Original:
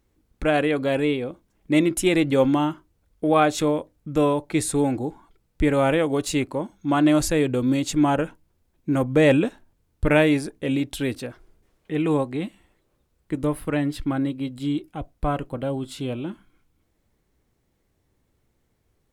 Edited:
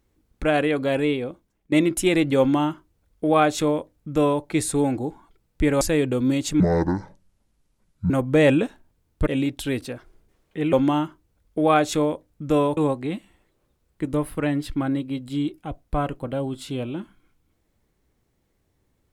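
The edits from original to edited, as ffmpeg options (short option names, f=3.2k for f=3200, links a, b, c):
-filter_complex "[0:a]asplit=8[a][b][c][d][e][f][g][h];[a]atrim=end=1.72,asetpts=PTS-STARTPTS,afade=t=out:st=1.26:d=0.46:silence=0.16788[i];[b]atrim=start=1.72:end=5.812,asetpts=PTS-STARTPTS,afade=t=in:d=0.004:c=hsin:silence=0.16788[j];[c]atrim=start=7.228:end=8.024[k];[d]atrim=start=8.02:end=8.92,asetpts=PTS-STARTPTS,asetrate=26460,aresample=44100[l];[e]atrim=start=8.916:end=10.092[m];[f]atrim=start=10.608:end=12.072[n];[g]atrim=start=2.388:end=4.432[o];[h]atrim=start=12.068[p];[i][j]concat=n=2:v=0:a=1[q];[q][k]acrossfade=d=0.004:c1=hsin:c2=hsin[r];[r][l]acrossfade=d=0.004:c1=hsin:c2=hsin[s];[s][m]acrossfade=d=0.004:c1=hsin:c2=hsin[t];[t][n]acrossfade=d=0.004:c1=hsin:c2=hsin[u];[u][o]acrossfade=d=0.004:c1=hsin:c2=hsin[v];[v][p]acrossfade=d=0.004:c1=hsin:c2=hsin"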